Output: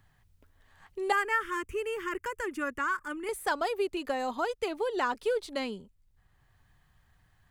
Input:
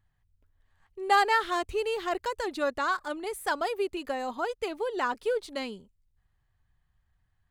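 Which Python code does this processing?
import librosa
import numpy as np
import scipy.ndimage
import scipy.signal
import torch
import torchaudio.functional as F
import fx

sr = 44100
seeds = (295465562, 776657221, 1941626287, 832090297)

y = fx.fixed_phaser(x, sr, hz=1700.0, stages=4, at=(1.12, 3.29))
y = fx.band_squash(y, sr, depth_pct=40)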